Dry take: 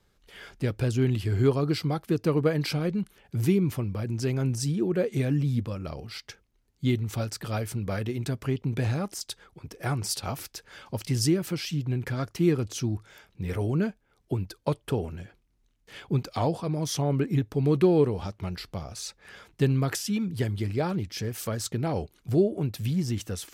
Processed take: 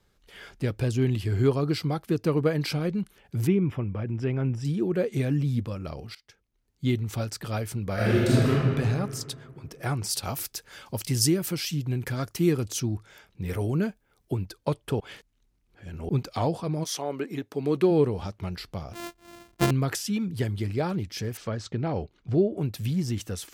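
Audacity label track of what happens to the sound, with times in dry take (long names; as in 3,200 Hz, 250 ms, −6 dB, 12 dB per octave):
0.810000	1.280000	notch filter 1,400 Hz, Q 10
3.470000	4.650000	Savitzky-Golay smoothing over 25 samples
6.150000	6.910000	fade in, from −21.5 dB
7.940000	8.490000	thrown reverb, RT60 2.1 s, DRR −10.5 dB
10.130000	12.800000	high-shelf EQ 6,700 Hz +10.5 dB
13.450000	14.350000	high-shelf EQ 10,000 Hz +10 dB
15.000000	16.090000	reverse
16.830000	17.900000	high-pass filter 510 Hz → 190 Hz
18.930000	19.710000	samples sorted by size in blocks of 128 samples
21.370000	22.570000	high-frequency loss of the air 140 metres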